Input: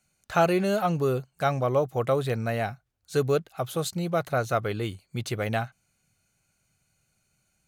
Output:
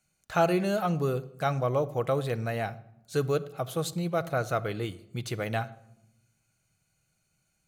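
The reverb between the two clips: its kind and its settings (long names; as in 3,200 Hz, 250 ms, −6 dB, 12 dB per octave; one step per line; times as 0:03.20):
rectangular room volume 2,800 cubic metres, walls furnished, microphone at 0.62 metres
level −3 dB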